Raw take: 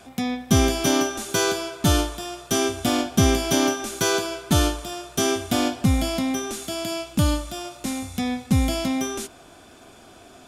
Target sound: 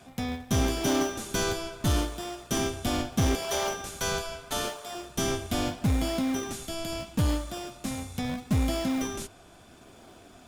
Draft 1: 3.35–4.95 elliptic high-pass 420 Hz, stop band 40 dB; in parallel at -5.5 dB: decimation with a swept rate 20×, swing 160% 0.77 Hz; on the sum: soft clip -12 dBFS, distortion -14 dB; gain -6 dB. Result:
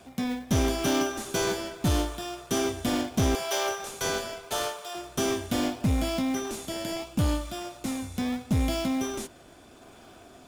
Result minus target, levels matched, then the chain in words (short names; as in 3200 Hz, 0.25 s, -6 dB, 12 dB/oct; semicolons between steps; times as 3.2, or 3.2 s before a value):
decimation with a swept rate: distortion -9 dB
3.35–4.95 elliptic high-pass 420 Hz, stop band 40 dB; in parallel at -5.5 dB: decimation with a swept rate 75×, swing 160% 0.77 Hz; on the sum: soft clip -12 dBFS, distortion -15 dB; gain -6 dB